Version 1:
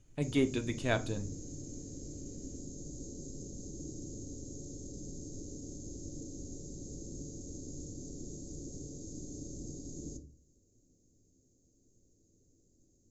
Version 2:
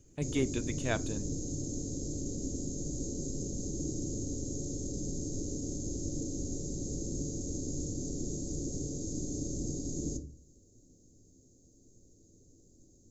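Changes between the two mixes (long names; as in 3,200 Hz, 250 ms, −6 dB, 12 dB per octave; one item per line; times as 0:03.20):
speech: send −8.5 dB
background +8.0 dB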